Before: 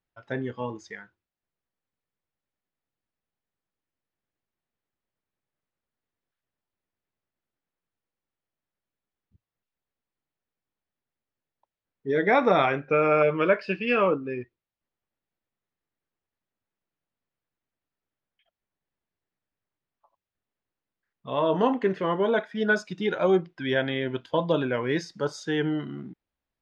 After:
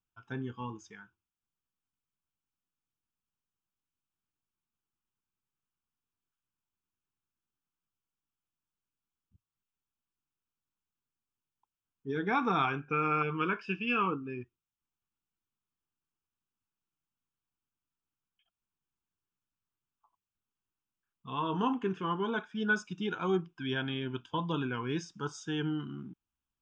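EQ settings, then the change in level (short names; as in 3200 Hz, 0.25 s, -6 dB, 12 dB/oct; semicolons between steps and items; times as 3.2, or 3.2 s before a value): fixed phaser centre 2900 Hz, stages 8; -3.0 dB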